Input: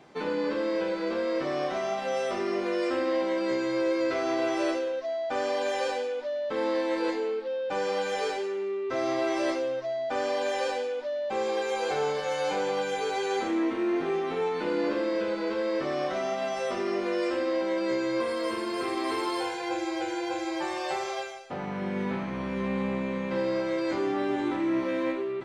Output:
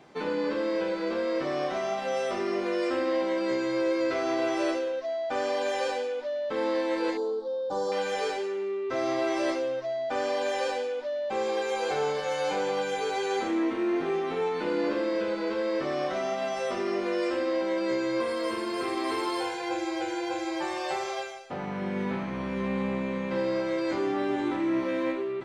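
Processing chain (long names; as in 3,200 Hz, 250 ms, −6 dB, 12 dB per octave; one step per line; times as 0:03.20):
0:07.17–0:07.92: drawn EQ curve 1,100 Hz 0 dB, 2,500 Hz −30 dB, 3,700 Hz −1 dB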